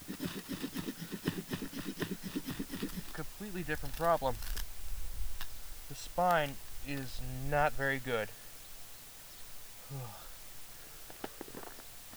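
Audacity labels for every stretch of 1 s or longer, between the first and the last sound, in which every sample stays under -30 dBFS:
8.240000	11.240000	silence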